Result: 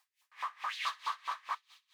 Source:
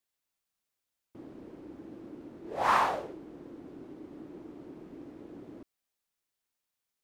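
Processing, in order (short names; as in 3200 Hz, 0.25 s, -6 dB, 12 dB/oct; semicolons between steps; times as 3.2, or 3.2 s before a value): G.711 law mismatch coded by mu; in parallel at -0.5 dB: compressor, threshold -38 dBFS, peak gain reduction 17 dB; on the sum: added noise white -66 dBFS; wide varispeed 3.64×; high shelf 7100 Hz -7 dB; de-hum 108.7 Hz, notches 37; LFO high-pass saw up 4.7 Hz 970–2600 Hz; low shelf 160 Hz -9 dB; notch 1400 Hz, Q 5.1; on a send: thin delay 64 ms, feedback 85%, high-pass 3500 Hz, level -15 dB; on the sum: dB-linear tremolo 4.6 Hz, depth 23 dB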